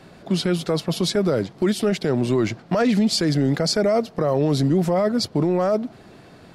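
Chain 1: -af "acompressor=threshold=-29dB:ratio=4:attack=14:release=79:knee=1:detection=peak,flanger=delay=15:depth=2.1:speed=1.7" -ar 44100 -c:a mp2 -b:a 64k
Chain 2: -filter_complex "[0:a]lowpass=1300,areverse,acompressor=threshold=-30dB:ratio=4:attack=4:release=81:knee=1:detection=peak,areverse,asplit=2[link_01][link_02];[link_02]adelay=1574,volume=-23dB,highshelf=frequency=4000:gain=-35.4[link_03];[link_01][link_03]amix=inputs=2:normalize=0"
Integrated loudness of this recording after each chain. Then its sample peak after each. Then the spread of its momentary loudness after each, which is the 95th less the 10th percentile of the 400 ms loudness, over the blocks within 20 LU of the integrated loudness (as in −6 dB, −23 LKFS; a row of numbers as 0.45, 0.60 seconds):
−32.0, −32.5 LKFS; −17.5, −22.0 dBFS; 4, 4 LU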